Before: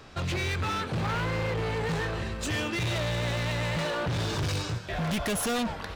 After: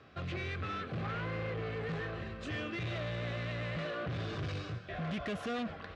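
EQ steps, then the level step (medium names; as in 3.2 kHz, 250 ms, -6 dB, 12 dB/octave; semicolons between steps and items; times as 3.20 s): high-pass 70 Hz; Butterworth band-stop 900 Hz, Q 5.3; low-pass 3.1 kHz 12 dB/octave; -7.5 dB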